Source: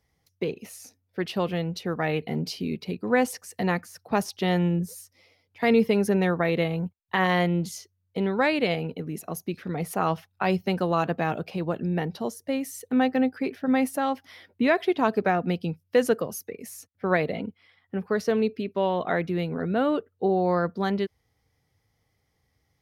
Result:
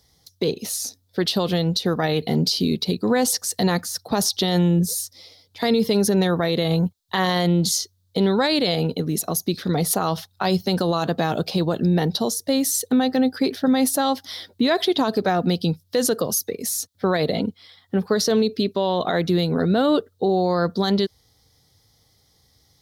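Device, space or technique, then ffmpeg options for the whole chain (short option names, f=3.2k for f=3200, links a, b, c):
over-bright horn tweeter: -af "highshelf=f=3.1k:t=q:w=3:g=7,alimiter=limit=-20dB:level=0:latency=1:release=67,volume=9dB"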